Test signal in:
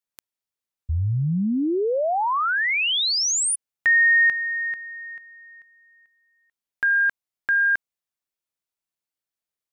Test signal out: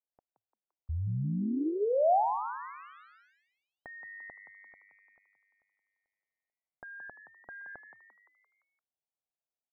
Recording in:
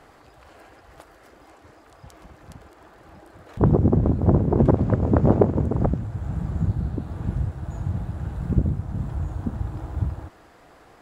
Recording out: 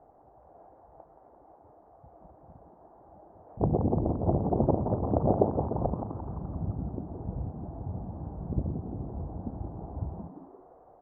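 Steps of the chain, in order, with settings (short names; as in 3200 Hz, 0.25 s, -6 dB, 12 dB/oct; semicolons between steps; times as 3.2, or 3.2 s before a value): ladder low-pass 840 Hz, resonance 55%; on a send: frequency-shifting echo 0.172 s, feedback 50%, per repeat +100 Hz, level -9 dB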